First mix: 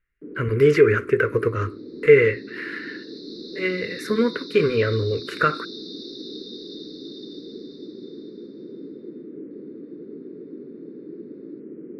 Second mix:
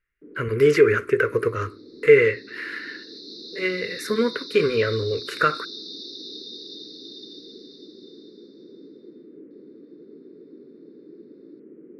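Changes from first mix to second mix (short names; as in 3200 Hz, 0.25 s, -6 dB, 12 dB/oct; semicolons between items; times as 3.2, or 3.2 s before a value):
first sound -6.0 dB; master: add tone controls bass -5 dB, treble +5 dB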